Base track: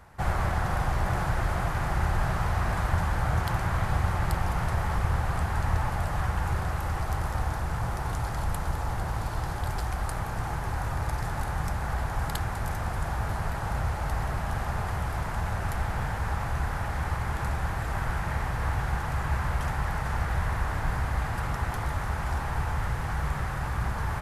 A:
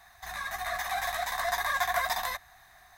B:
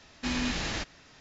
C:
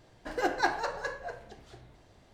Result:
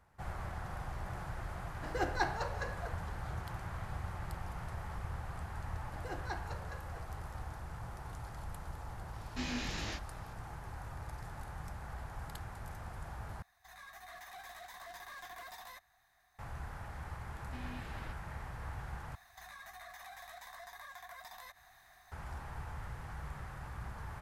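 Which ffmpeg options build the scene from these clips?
-filter_complex "[3:a]asplit=2[s0][s1];[2:a]asplit=2[s2][s3];[1:a]asplit=2[s4][s5];[0:a]volume=0.178[s6];[s2]flanger=delay=18.5:depth=4:speed=2.9[s7];[s4]asoftclip=type=tanh:threshold=0.0335[s8];[s3]lowpass=2700[s9];[s5]acompressor=threshold=0.00708:ratio=6:attack=3.2:release=140:knee=1:detection=peak[s10];[s6]asplit=3[s11][s12][s13];[s11]atrim=end=13.424[s14];[s8]atrim=end=2.97,asetpts=PTS-STARTPTS,volume=0.168[s15];[s12]atrim=start=16.386:end=19.154[s16];[s10]atrim=end=2.97,asetpts=PTS-STARTPTS,volume=0.531[s17];[s13]atrim=start=22.116[s18];[s0]atrim=end=2.33,asetpts=PTS-STARTPTS,volume=0.501,afade=t=in:d=0.004:c=hsin,afade=t=out:st=2.326:d=0.004:c=hsin,adelay=1570[s19];[s1]atrim=end=2.33,asetpts=PTS-STARTPTS,volume=0.178,afade=t=in:d=0.004:c=hsin,afade=t=out:st=2.326:d=0.004:c=hsin,adelay=5670[s20];[s7]atrim=end=1.2,asetpts=PTS-STARTPTS,volume=0.562,afade=t=in:d=0.004:c=hsin,afade=t=out:st=1.196:d=0.004:c=hsin,adelay=9130[s21];[s9]atrim=end=1.2,asetpts=PTS-STARTPTS,volume=0.15,afade=t=in:d=0.004:c=hsin,afade=t=out:st=1.196:d=0.004:c=hsin,adelay=17290[s22];[s14][s15]acrossfade=d=0.004:c1=hsin:c2=hsin[s23];[s23][s16]acrossfade=d=0.004:c1=hsin:c2=hsin[s24];[s24][s17]acrossfade=d=0.004:c1=hsin:c2=hsin[s25];[s25][s18]acrossfade=d=0.004:c1=hsin:c2=hsin[s26];[s26][s19][s20][s21][s22]amix=inputs=5:normalize=0"

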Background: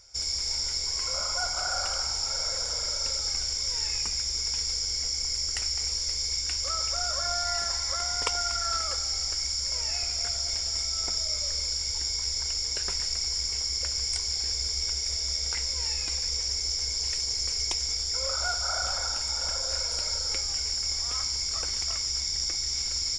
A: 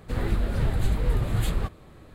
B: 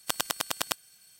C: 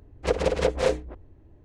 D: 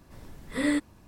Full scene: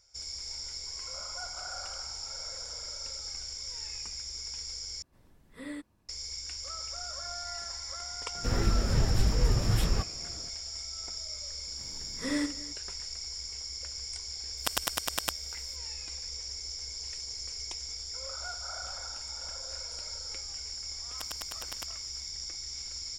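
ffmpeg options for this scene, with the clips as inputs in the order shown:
-filter_complex "[4:a]asplit=2[s0][s1];[2:a]asplit=2[s2][s3];[0:a]volume=0.316[s4];[s1]aecho=1:1:59|263:0.335|0.112[s5];[s4]asplit=2[s6][s7];[s6]atrim=end=5.024[s8];[s0]atrim=end=1.07,asetpts=PTS-STARTPTS,volume=0.178[s9];[s7]atrim=start=6.086[s10];[1:a]atrim=end=2.14,asetpts=PTS-STARTPTS,volume=0.841,afade=t=in:d=0.004:c=hsin,afade=t=out:st=2.136:d=0.004:c=hsin,adelay=8350[s11];[s5]atrim=end=1.07,asetpts=PTS-STARTPTS,volume=0.531,afade=t=in:d=0.004:c=hsin,afade=t=out:st=1.066:d=0.004:c=hsin,adelay=11670[s12];[s2]atrim=end=1.19,asetpts=PTS-STARTPTS,volume=0.841,afade=t=in:d=0.004:c=hsin,afade=t=out:st=1.186:d=0.004:c=hsin,adelay=14570[s13];[s3]atrim=end=1.19,asetpts=PTS-STARTPTS,volume=0.211,afade=t=in:d=0.004:c=hsin,afade=t=out:st=1.186:d=0.004:c=hsin,adelay=21110[s14];[s8][s9]acrossfade=d=0.004:c1=hsin:c2=hsin[s15];[s15][s10]acrossfade=d=0.004:c1=hsin:c2=hsin[s16];[s16][s11][s12][s13][s14]amix=inputs=5:normalize=0"

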